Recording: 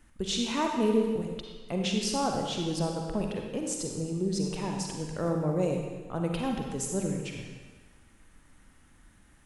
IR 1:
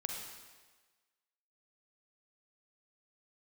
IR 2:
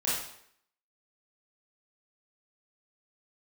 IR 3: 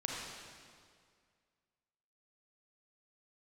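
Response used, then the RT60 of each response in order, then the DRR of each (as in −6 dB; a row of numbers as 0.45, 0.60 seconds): 1; 1.4, 0.70, 2.1 seconds; 1.0, −9.0, −2.5 decibels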